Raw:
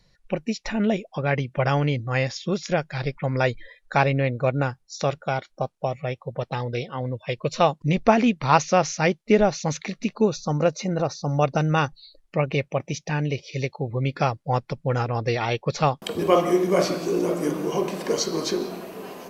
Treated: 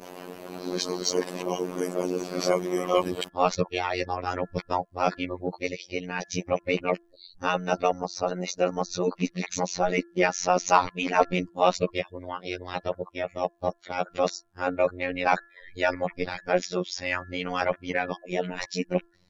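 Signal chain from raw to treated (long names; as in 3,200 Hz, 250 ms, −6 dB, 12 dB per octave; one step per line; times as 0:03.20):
played backwards from end to start
harmonic and percussive parts rebalanced harmonic −12 dB
phases set to zero 90.2 Hz
in parallel at −4 dB: soft clipping −16.5 dBFS, distortion −11 dB
on the sum: hum removal 342.1 Hz, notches 5
level −1 dB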